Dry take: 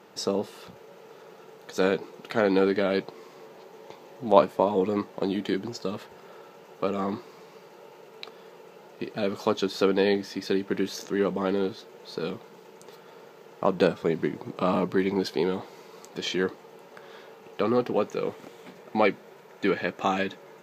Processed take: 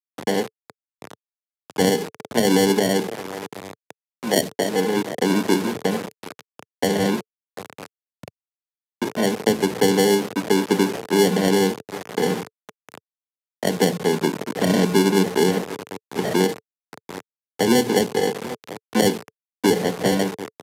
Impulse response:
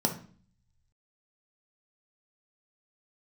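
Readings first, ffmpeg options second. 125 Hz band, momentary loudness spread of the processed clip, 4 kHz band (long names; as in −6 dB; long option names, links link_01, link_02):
+8.5 dB, 17 LU, +10.0 dB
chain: -filter_complex "[0:a]asplit=2[link_01][link_02];[1:a]atrim=start_sample=2205,lowpass=4100[link_03];[link_02][link_03]afir=irnorm=-1:irlink=0,volume=-15.5dB[link_04];[link_01][link_04]amix=inputs=2:normalize=0,dynaudnorm=framelen=160:gausssize=7:maxgain=5dB,acrusher=samples=35:mix=1:aa=0.000001,afftfilt=real='re*gte(hypot(re,im),0.0355)':imag='im*gte(hypot(re,im),0.0355)':win_size=1024:overlap=0.75,asplit=2[link_05][link_06];[link_06]adelay=740,lowpass=frequency=3300:poles=1,volume=-19dB,asplit=2[link_07][link_08];[link_08]adelay=740,lowpass=frequency=3300:poles=1,volume=0.27[link_09];[link_05][link_07][link_09]amix=inputs=3:normalize=0,acrusher=bits=4:mix=0:aa=0.000001,acrossover=split=350|3000[link_10][link_11][link_12];[link_11]acompressor=threshold=-22dB:ratio=6[link_13];[link_10][link_13][link_12]amix=inputs=3:normalize=0,aresample=32000,aresample=44100,highpass=frequency=110:width=0.5412,highpass=frequency=110:width=1.3066,adynamicequalizer=threshold=0.00891:dfrequency=440:dqfactor=6.1:tfrequency=440:tqfactor=6.1:attack=5:release=100:ratio=0.375:range=4:mode=boostabove:tftype=bell"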